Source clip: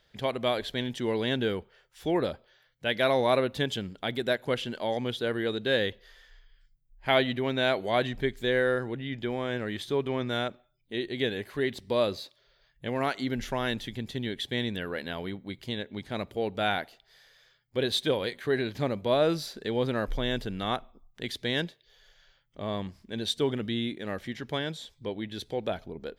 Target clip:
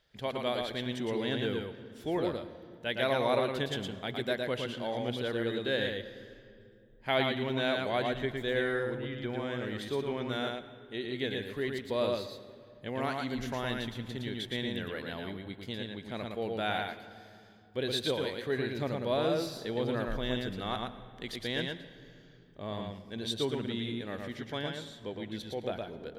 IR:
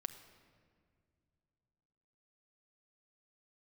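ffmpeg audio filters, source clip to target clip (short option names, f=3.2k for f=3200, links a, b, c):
-filter_complex "[0:a]asplit=2[a][b];[1:a]atrim=start_sample=2205,asetrate=29988,aresample=44100,adelay=113[c];[b][c]afir=irnorm=-1:irlink=0,volume=-3dB[d];[a][d]amix=inputs=2:normalize=0,volume=-5.5dB"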